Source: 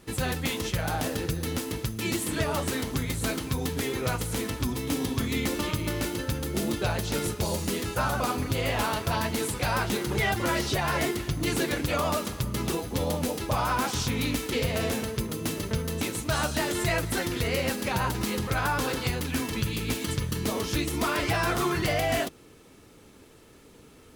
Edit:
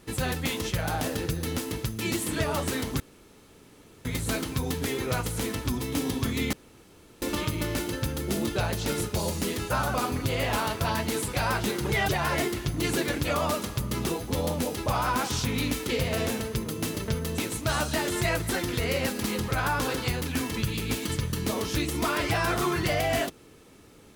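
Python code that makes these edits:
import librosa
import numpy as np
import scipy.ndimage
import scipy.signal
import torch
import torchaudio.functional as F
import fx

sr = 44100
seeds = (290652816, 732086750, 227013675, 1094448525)

y = fx.edit(x, sr, fx.insert_room_tone(at_s=3.0, length_s=1.05),
    fx.insert_room_tone(at_s=5.48, length_s=0.69),
    fx.cut(start_s=10.35, length_s=0.37),
    fx.cut(start_s=17.86, length_s=0.36), tone=tone)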